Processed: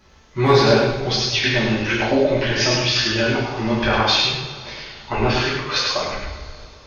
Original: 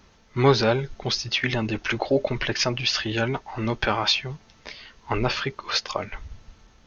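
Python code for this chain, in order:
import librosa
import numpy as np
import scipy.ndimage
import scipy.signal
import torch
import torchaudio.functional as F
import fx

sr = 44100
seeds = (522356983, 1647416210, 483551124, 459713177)

y = np.clip(x, -10.0 ** (-7.0 / 20.0), 10.0 ** (-7.0 / 20.0))
y = y + 10.0 ** (-3.5 / 20.0) * np.pad(y, (int(102 * sr / 1000.0), 0))[:len(y)]
y = fx.rev_double_slope(y, sr, seeds[0], early_s=0.72, late_s=3.5, knee_db=-19, drr_db=-7.0)
y = F.gain(torch.from_numpy(y), -3.0).numpy()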